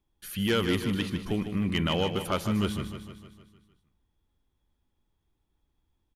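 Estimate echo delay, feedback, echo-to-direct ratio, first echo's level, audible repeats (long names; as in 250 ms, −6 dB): 153 ms, 56%, −7.5 dB, −9.0 dB, 6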